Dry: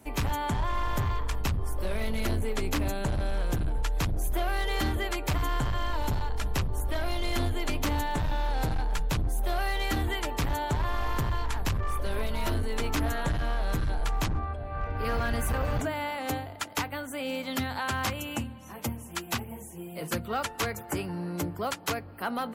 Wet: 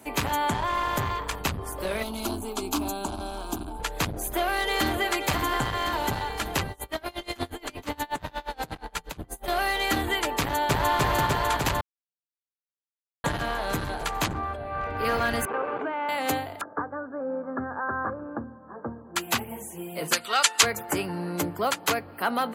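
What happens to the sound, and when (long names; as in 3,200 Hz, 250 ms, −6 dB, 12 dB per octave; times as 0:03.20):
0:02.03–0:03.80: phaser with its sweep stopped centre 510 Hz, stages 6
0:04.31–0:05.04: delay throw 530 ms, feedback 80%, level −9 dB
0:06.71–0:09.48: tremolo with a sine in dB 8.4 Hz, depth 28 dB
0:10.39–0:10.96: delay throw 300 ms, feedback 80%, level 0 dB
0:11.81–0:13.24: silence
0:15.45–0:16.09: loudspeaker in its box 390–2,200 Hz, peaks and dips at 400 Hz +10 dB, 640 Hz −7 dB, 1,900 Hz −10 dB
0:16.61–0:19.16: Chebyshev low-pass with heavy ripple 1,700 Hz, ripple 6 dB
0:20.13–0:20.63: meter weighting curve ITU-R 468
whole clip: high-pass filter 280 Hz 6 dB per octave; notch filter 5,500 Hz, Q 14; level +6.5 dB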